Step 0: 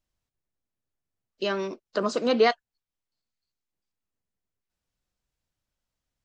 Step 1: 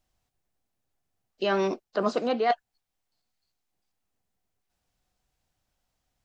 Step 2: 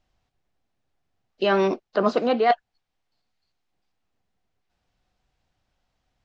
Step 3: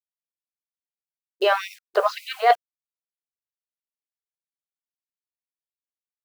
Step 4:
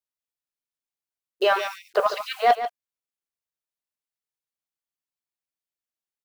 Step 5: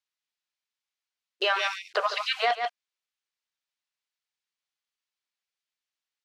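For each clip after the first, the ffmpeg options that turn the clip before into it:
-filter_complex "[0:a]acrossover=split=4200[s0][s1];[s1]acompressor=threshold=0.00316:ratio=4:attack=1:release=60[s2];[s0][s2]amix=inputs=2:normalize=0,equalizer=f=750:t=o:w=0.28:g=8.5,areverse,acompressor=threshold=0.0447:ratio=16,areverse,volume=2"
-af "lowpass=4500,volume=1.78"
-af "agate=range=0.0224:threshold=0.00398:ratio=3:detection=peak,acrusher=bits=7:mix=0:aa=0.000001,afftfilt=real='re*gte(b*sr/1024,370*pow(2000/370,0.5+0.5*sin(2*PI*1.9*pts/sr)))':imag='im*gte(b*sr/1024,370*pow(2000/370,0.5+0.5*sin(2*PI*1.9*pts/sr)))':win_size=1024:overlap=0.75,volume=1.41"
-af "asoftclip=type=tanh:threshold=0.422,aecho=1:1:143:0.282"
-af "lowpass=4800,tiltshelf=f=790:g=-9.5,alimiter=limit=0.188:level=0:latency=1:release=177"

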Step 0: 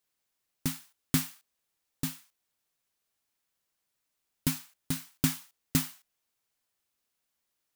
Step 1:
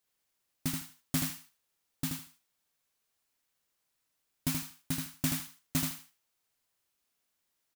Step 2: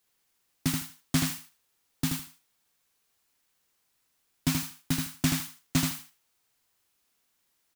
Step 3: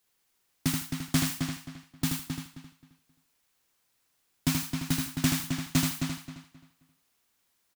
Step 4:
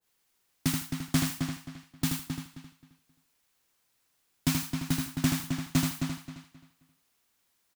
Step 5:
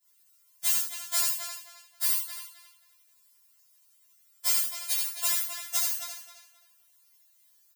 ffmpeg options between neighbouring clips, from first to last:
-filter_complex "[0:a]asoftclip=type=tanh:threshold=0.0708,asplit=2[s0][s1];[s1]aecho=0:1:79|158|237:0.631|0.12|0.0228[s2];[s0][s2]amix=inputs=2:normalize=0"
-filter_complex "[0:a]bandreject=f=600:w=12,acrossover=split=110|7900[s0][s1][s2];[s2]alimiter=level_in=2.99:limit=0.0631:level=0:latency=1,volume=0.335[s3];[s0][s1][s3]amix=inputs=3:normalize=0,volume=2.11"
-filter_complex "[0:a]asplit=2[s0][s1];[s1]adelay=265,lowpass=f=4600:p=1,volume=0.531,asplit=2[s2][s3];[s3]adelay=265,lowpass=f=4600:p=1,volume=0.27,asplit=2[s4][s5];[s5]adelay=265,lowpass=f=4600:p=1,volume=0.27,asplit=2[s6][s7];[s7]adelay=265,lowpass=f=4600:p=1,volume=0.27[s8];[s0][s2][s4][s6][s8]amix=inputs=5:normalize=0"
-af "adynamicequalizer=threshold=0.00355:dfrequency=1600:dqfactor=0.7:tfrequency=1600:tqfactor=0.7:attack=5:release=100:ratio=0.375:range=2:mode=cutabove:tftype=highshelf"
-af "highpass=f=800:w=0.5412,highpass=f=800:w=1.3066,crystalizer=i=2.5:c=0,afftfilt=real='re*4*eq(mod(b,16),0)':imag='im*4*eq(mod(b,16),0)':win_size=2048:overlap=0.75"

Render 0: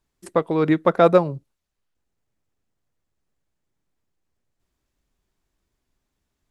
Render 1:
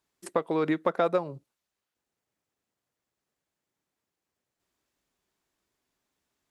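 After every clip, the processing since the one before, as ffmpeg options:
-af "highpass=f=340:p=1,acompressor=threshold=0.0631:ratio=3"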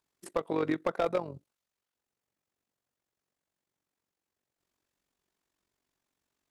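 -af "tremolo=f=46:d=0.71,asoftclip=type=hard:threshold=0.0944"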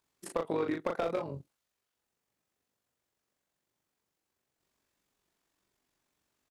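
-filter_complex "[0:a]acompressor=threshold=0.0282:ratio=6,asplit=2[s0][s1];[s1]adelay=36,volume=0.631[s2];[s0][s2]amix=inputs=2:normalize=0,volume=1.26"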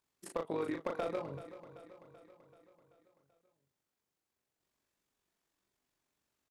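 -af "aecho=1:1:384|768|1152|1536|1920|2304:0.2|0.114|0.0648|0.037|0.0211|0.012,volume=0.596"

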